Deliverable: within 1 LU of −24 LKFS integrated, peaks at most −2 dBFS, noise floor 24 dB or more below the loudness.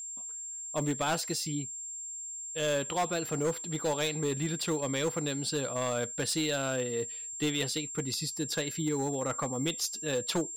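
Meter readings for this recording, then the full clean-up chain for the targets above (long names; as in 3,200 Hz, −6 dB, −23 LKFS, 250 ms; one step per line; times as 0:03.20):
share of clipped samples 1.4%; peaks flattened at −24.5 dBFS; interfering tone 7,400 Hz; level of the tone −38 dBFS; integrated loudness −32.0 LKFS; sample peak −24.5 dBFS; target loudness −24.0 LKFS
→ clipped peaks rebuilt −24.5 dBFS
notch filter 7,400 Hz, Q 30
level +8 dB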